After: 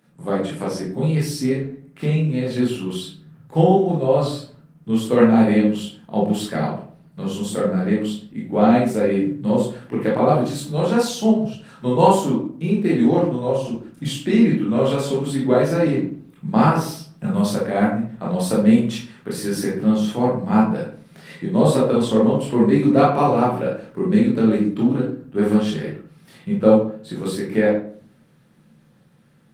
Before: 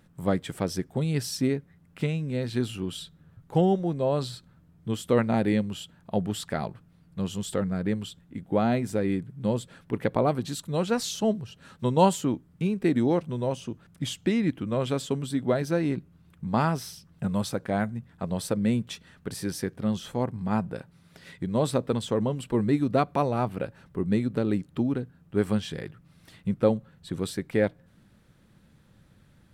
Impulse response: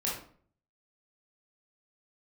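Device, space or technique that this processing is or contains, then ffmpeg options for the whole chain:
far-field microphone of a smart speaker: -filter_complex "[0:a]asettb=1/sr,asplit=3[a][b][c];[a]atrim=end=8.634[d];[b]atrim=start=8.63:end=9.49,asetpts=PTS-STARTPTS,afade=t=in:d=0.004:c=qsin,afade=t=out:st=0.856:d=0.004:c=qsin,highpass=70[e];[c]atrim=start=9.486[f];[d][e]acrossfade=d=0.004:c1=hsin:c2=qsin[g];[g][f]acrossfade=d=0.004:c1=qsin:c2=hsin[h];[1:a]atrim=start_sample=2205[i];[h][i]afir=irnorm=-1:irlink=0,highpass=f=140:w=0.5412,highpass=f=140:w=1.3066,dynaudnorm=f=370:g=11:m=5.5dB" -ar 48000 -c:a libopus -b:a 24k

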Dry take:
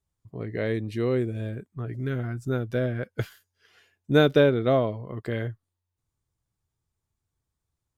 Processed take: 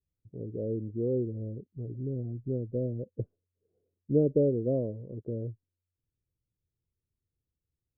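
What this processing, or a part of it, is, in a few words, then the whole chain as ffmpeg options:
under water: -filter_complex "[0:a]lowpass=f=400:w=0.5412,lowpass=f=400:w=1.3066,equalizer=f=530:t=o:w=0.55:g=10,asettb=1/sr,asplit=3[a][b][c];[a]atrim=end=0.824[d];[b]atrim=start=0.82:end=1.25,asetpts=PTS-STARTPTS,afade=t=in:d=0.004:c=qsin,afade=t=out:st=0.426:d=0.004:c=qsin,highshelf=f=2k:t=q:w=3:g=-9[e];[c]atrim=start=1.246[f];[d][e]acrossfade=d=0.004:c1=hsin:c2=qsin[g];[g][f]acrossfade=d=0.004:c1=qsin:c2=hsin,volume=-5dB"

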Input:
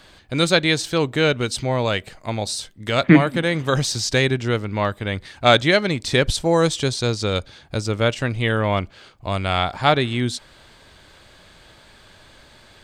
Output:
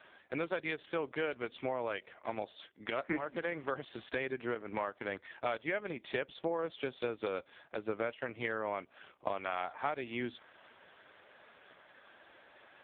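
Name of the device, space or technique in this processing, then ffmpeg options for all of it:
voicemail: -af "highpass=370,lowpass=2.7k,acompressor=threshold=-30dB:ratio=6,volume=-2dB" -ar 8000 -c:a libopencore_amrnb -b:a 4750

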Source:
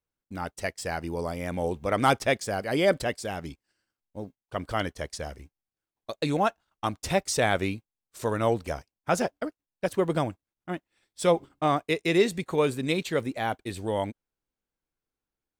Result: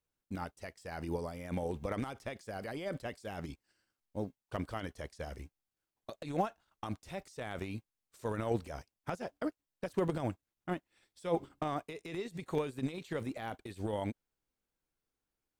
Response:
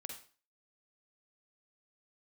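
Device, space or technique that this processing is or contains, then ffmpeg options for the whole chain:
de-esser from a sidechain: -filter_complex "[0:a]asplit=2[a][b];[b]highpass=6.2k,apad=whole_len=687862[c];[a][c]sidechaincompress=threshold=-60dB:ratio=8:attack=1.7:release=31"

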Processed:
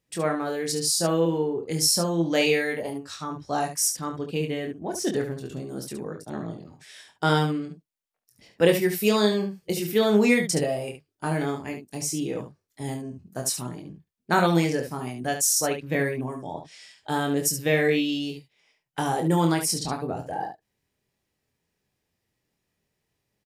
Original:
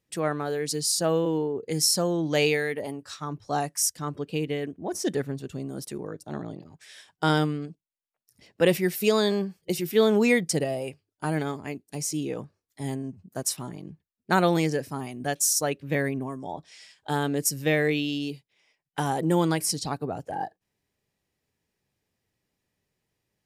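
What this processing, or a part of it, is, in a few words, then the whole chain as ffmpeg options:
slapback doubling: -filter_complex "[0:a]asplit=3[a][b][c];[b]adelay=24,volume=-5dB[d];[c]adelay=71,volume=-8dB[e];[a][d][e]amix=inputs=3:normalize=0"

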